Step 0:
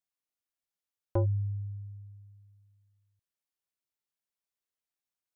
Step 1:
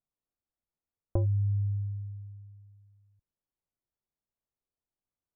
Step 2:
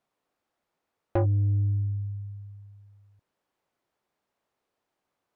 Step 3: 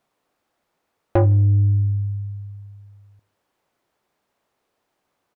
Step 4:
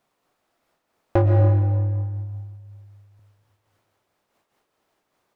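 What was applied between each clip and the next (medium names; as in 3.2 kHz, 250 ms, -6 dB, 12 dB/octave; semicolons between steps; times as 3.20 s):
low-pass 1.2 kHz; tilt EQ -2.5 dB/octave; compression 6:1, threshold -26 dBFS, peak gain reduction 9.5 dB; trim +1 dB
overdrive pedal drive 29 dB, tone 1 kHz, clips at -14.5 dBFS
feedback delay 78 ms, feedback 44%, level -23.5 dB; trim +8 dB
in parallel at -5.5 dB: saturation -24.5 dBFS, distortion -7 dB; on the sum: algorithmic reverb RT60 1.8 s, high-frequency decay 0.9×, pre-delay 80 ms, DRR 3 dB; random flutter of the level, depth 60%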